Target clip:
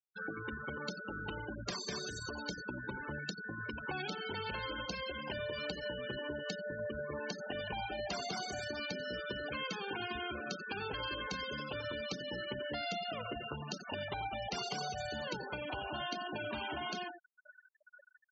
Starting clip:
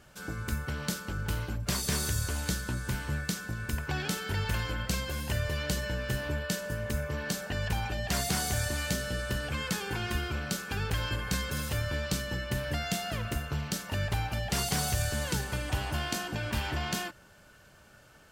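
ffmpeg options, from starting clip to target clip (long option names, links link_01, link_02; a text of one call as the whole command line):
ffmpeg -i in.wav -filter_complex "[0:a]acrossover=split=230 7600:gain=0.126 1 0.0794[link_01][link_02][link_03];[link_01][link_02][link_03]amix=inputs=3:normalize=0,aecho=1:1:89|178|267:0.355|0.0639|0.0115,adynamicequalizer=threshold=0.00158:dfrequency=1800:dqfactor=7.2:tfrequency=1800:tqfactor=7.2:attack=5:release=100:ratio=0.375:range=3:mode=cutabove:tftype=bell,acompressor=threshold=-47dB:ratio=2.5,afftfilt=real='re*gte(hypot(re,im),0.00891)':imag='im*gte(hypot(re,im),0.00891)':win_size=1024:overlap=0.75,volume=7dB" out.wav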